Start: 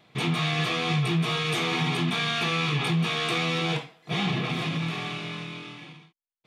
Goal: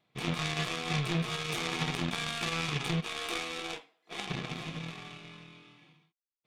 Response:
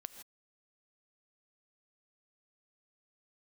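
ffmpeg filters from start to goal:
-filter_complex "[0:a]asplit=3[link_01][link_02][link_03];[link_01]afade=type=out:start_time=3:duration=0.02[link_04];[link_02]highpass=frequency=260:width=0.5412,highpass=frequency=260:width=1.3066,afade=type=in:start_time=3:duration=0.02,afade=type=out:start_time=4.28:duration=0.02[link_05];[link_03]afade=type=in:start_time=4.28:duration=0.02[link_06];[link_04][link_05][link_06]amix=inputs=3:normalize=0,aeval=exprs='0.178*(cos(1*acos(clip(val(0)/0.178,-1,1)))-cos(1*PI/2))+0.00794*(cos(2*acos(clip(val(0)/0.178,-1,1)))-cos(2*PI/2))+0.0501*(cos(3*acos(clip(val(0)/0.178,-1,1)))-cos(3*PI/2))':channel_layout=same"

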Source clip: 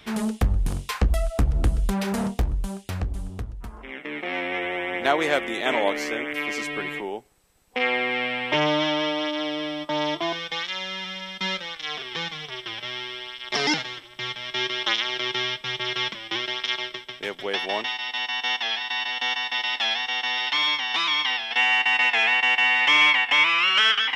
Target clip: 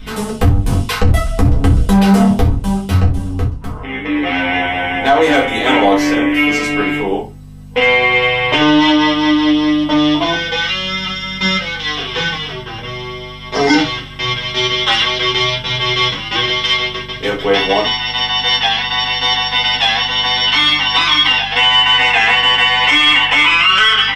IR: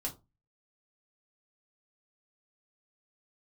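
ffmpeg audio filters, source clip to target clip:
-filter_complex "[0:a]asettb=1/sr,asplit=3[link_01][link_02][link_03];[link_01]atrim=end=12.524[link_04];[link_02]atrim=start=12.52:end=13.7,asetpts=PTS-STARTPTS,afade=type=in:duration=0.004:curve=qsin,afade=type=out:start_time=1.176:duration=0.004:curve=qsin,equalizer=frequency=3500:width=0.6:gain=-10.5[link_05];[link_03]atrim=start=13.696[link_06];[link_04][link_05]acrossfade=duration=0.004:curve1=hsin:curve2=qsin[link_07];[link_07][link_06]acrossfade=duration=0.004:curve1=qsin:curve2=hsin,acrossover=split=4500[link_08][link_09];[link_08]dynaudnorm=framelen=150:gausssize=5:maxgain=4dB[link_10];[link_10][link_09]amix=inputs=2:normalize=0,aecho=1:1:10|35|62:0.668|0.299|0.2,asplit=2[link_11][link_12];[link_12]aeval=exprs='0.891*sin(PI/2*1.58*val(0)/0.891)':channel_layout=same,volume=-10dB[link_13];[link_11][link_13]amix=inputs=2:normalize=0,aeval=exprs='val(0)+0.02*(sin(2*PI*50*n/s)+sin(2*PI*2*50*n/s)/2+sin(2*PI*3*50*n/s)/3+sin(2*PI*4*50*n/s)/4+sin(2*PI*5*50*n/s)/5)':channel_layout=same[link_14];[1:a]atrim=start_sample=2205[link_15];[link_14][link_15]afir=irnorm=-1:irlink=0,flanger=delay=6.7:depth=2:regen=-68:speed=0.51:shape=sinusoidal,alimiter=level_in=7.5dB:limit=-1dB:release=50:level=0:latency=1,volume=-1dB"

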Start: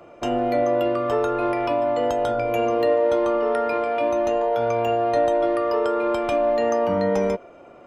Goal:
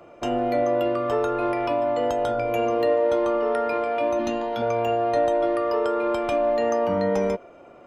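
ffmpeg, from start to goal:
ffmpeg -i in.wav -filter_complex "[0:a]asettb=1/sr,asplit=3[link_01][link_02][link_03];[link_01]atrim=end=4.194[link_04];[link_02]atrim=start=4.19:end=4.62,asetpts=PTS-STARTPTS,afade=type=in:duration=0.004:curve=qsin,afade=type=out:start_time=0.426:duration=0.004:curve=qsin,equalizer=frequency=250:width_type=o:width=1:gain=12,equalizer=frequency=500:width_type=o:width=1:gain=-10,equalizer=frequency=4000:width_type=o:width=1:gain=8[link_05];[link_03]atrim=start=4.616[link_06];[link_04][link_05]acrossfade=duration=0.004:curve1=hsin:curve2=qsin[link_07];[link_07][link_06]acrossfade=duration=0.004:curve1=qsin:curve2=hsin,volume=-1.5dB" out.wav

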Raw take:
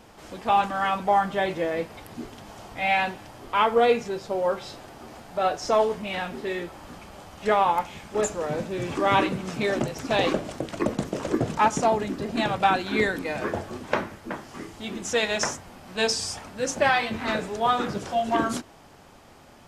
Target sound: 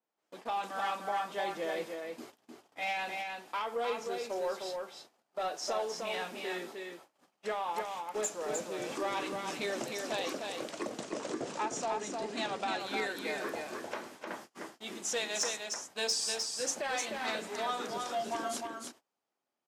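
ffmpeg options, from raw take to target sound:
ffmpeg -i in.wav -filter_complex "[0:a]asettb=1/sr,asplit=3[link_01][link_02][link_03];[link_01]atrim=end=10.704[link_04];[link_02]atrim=start=10.7:end=12.8,asetpts=PTS-STARTPTS,afade=type=in:duration=0.004:curve=qsin,afade=type=out:start_time=2.096:duration=0.004:curve=qsin,lowpass=frequency=8900:width=0.5412,lowpass=frequency=8900:width=1.3066[link_05];[link_03]atrim=start=12.796[link_06];[link_04][link_05]acrossfade=duration=0.004:curve1=hsin:curve2=qsin[link_07];[link_07][link_06]acrossfade=duration=0.004:curve1=qsin:curve2=hsin,agate=range=-30dB:threshold=-39dB:ratio=16:detection=peak,highpass=300,alimiter=limit=-16.5dB:level=0:latency=1:release=308,asoftclip=type=tanh:threshold=-18.5dB,aecho=1:1:306:0.596,adynamicequalizer=threshold=0.00562:dfrequency=3500:dqfactor=0.7:tfrequency=3500:tqfactor=0.7:attack=5:release=100:ratio=0.375:range=3.5:mode=boostabove:tftype=highshelf,volume=-7.5dB" out.wav

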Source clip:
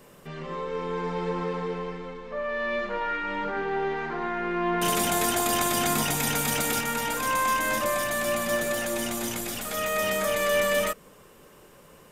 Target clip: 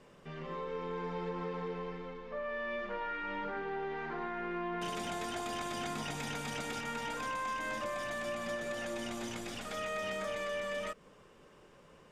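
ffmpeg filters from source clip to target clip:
ffmpeg -i in.wav -af "acompressor=threshold=-28dB:ratio=4,lowpass=5500,bandreject=frequency=4100:width=28,volume=-6.5dB" out.wav

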